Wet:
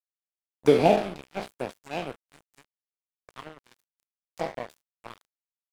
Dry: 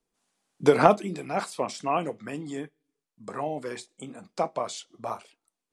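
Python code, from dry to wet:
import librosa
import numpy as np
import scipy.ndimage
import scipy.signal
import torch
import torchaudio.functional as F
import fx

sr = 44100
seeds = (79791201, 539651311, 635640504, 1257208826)

y = fx.spec_trails(x, sr, decay_s=0.6)
y = fx.band_shelf(y, sr, hz=1400.0, db=-14.5, octaves=1.0, at=(0.76, 2.32))
y = fx.env_phaser(y, sr, low_hz=220.0, high_hz=1300.0, full_db=-22.5)
y = np.sign(y) * np.maximum(np.abs(y) - 10.0 ** (-32.0 / 20.0), 0.0)
y = y * librosa.db_to_amplitude(1.5)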